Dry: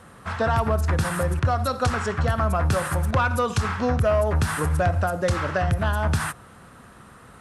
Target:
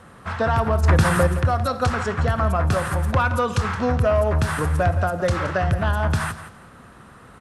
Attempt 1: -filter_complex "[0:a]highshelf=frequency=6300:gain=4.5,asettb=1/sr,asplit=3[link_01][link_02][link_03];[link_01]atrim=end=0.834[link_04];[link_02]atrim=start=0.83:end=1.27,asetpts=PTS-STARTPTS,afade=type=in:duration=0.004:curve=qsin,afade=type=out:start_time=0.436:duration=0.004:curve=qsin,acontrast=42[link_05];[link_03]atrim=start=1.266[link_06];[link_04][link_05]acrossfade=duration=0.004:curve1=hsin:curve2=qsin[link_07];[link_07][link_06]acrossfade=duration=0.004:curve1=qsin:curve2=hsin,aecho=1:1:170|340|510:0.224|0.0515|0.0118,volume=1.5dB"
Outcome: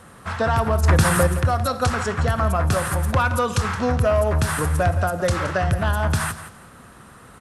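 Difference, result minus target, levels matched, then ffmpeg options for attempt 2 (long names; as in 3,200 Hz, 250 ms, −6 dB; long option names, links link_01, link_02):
8,000 Hz band +6.5 dB
-filter_complex "[0:a]highshelf=frequency=6300:gain=-6,asettb=1/sr,asplit=3[link_01][link_02][link_03];[link_01]atrim=end=0.834[link_04];[link_02]atrim=start=0.83:end=1.27,asetpts=PTS-STARTPTS,afade=type=in:duration=0.004:curve=qsin,afade=type=out:start_time=0.436:duration=0.004:curve=qsin,acontrast=42[link_05];[link_03]atrim=start=1.266[link_06];[link_04][link_05]acrossfade=duration=0.004:curve1=hsin:curve2=qsin[link_07];[link_07][link_06]acrossfade=duration=0.004:curve1=qsin:curve2=hsin,aecho=1:1:170|340|510:0.224|0.0515|0.0118,volume=1.5dB"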